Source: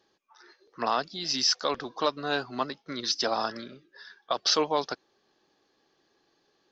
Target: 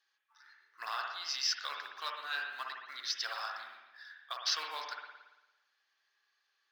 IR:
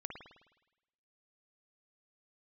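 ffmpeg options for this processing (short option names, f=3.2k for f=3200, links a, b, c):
-filter_complex "[0:a]acrusher=bits=7:mode=log:mix=0:aa=0.000001,highpass=f=1.6k:t=q:w=1.6[a];[1:a]atrim=start_sample=2205,asetrate=41454,aresample=44100[b];[a][b]afir=irnorm=-1:irlink=0,volume=-4.5dB"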